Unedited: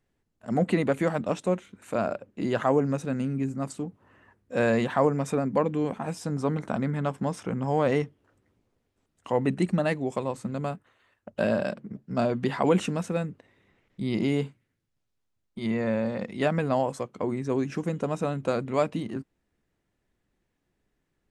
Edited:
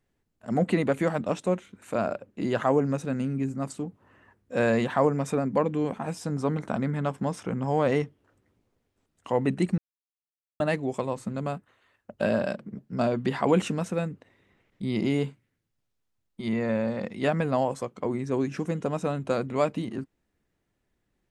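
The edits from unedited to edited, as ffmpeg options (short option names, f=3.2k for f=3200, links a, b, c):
-filter_complex "[0:a]asplit=2[a][b];[a]atrim=end=9.78,asetpts=PTS-STARTPTS,afade=t=out:st=9.776:d=0.004:c=hsin,apad=pad_dur=0.82[c];[b]atrim=start=9.78,asetpts=PTS-STARTPTS,afade=t=in:d=0.004:c=hsin[d];[c][d]concat=n=2:v=0:a=1"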